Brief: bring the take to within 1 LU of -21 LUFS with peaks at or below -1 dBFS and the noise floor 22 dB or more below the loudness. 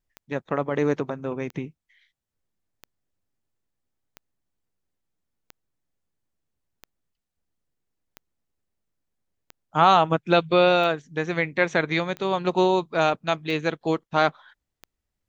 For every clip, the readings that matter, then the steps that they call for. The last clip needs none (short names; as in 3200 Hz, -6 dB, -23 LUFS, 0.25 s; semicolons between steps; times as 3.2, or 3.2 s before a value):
clicks 12; loudness -23.0 LUFS; peak -4.5 dBFS; loudness target -21.0 LUFS
-> de-click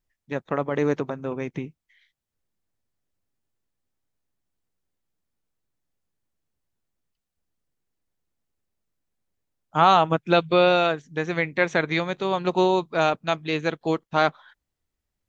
clicks 0; loudness -23.0 LUFS; peak -4.5 dBFS; loudness target -21.0 LUFS
-> gain +2 dB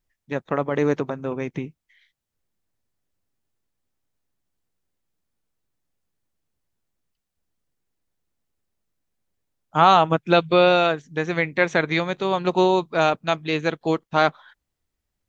loudness -21.0 LUFS; peak -2.5 dBFS; noise floor -82 dBFS